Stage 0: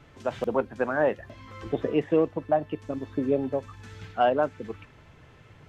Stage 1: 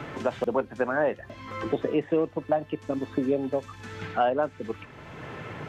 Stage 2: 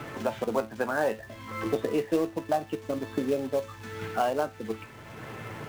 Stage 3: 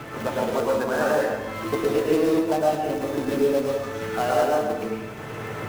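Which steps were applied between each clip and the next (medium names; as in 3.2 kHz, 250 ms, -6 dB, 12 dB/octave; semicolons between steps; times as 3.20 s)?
bass shelf 90 Hz -7 dB; three bands compressed up and down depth 70%
feedback comb 110 Hz, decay 0.24 s, harmonics all, mix 70%; in parallel at -3.5 dB: companded quantiser 4-bit
in parallel at -10 dB: integer overflow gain 28.5 dB; on the sum: plate-style reverb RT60 1.2 s, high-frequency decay 0.6×, pre-delay 95 ms, DRR -4 dB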